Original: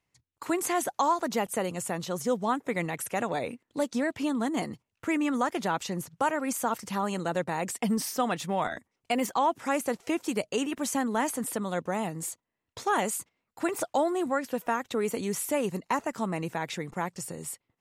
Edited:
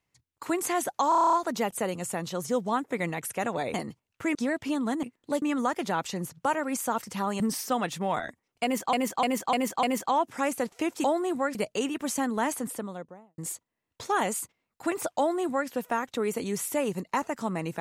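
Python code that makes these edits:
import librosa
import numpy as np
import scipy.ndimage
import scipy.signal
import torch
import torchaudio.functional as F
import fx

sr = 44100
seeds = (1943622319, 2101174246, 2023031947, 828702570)

y = fx.studio_fade_out(x, sr, start_s=11.26, length_s=0.89)
y = fx.edit(y, sr, fx.stutter(start_s=1.09, slice_s=0.03, count=9),
    fx.swap(start_s=3.5, length_s=0.39, other_s=4.57, other_length_s=0.61),
    fx.cut(start_s=7.16, length_s=0.72),
    fx.repeat(start_s=9.11, length_s=0.3, count=5),
    fx.duplicate(start_s=13.95, length_s=0.51, to_s=10.32), tone=tone)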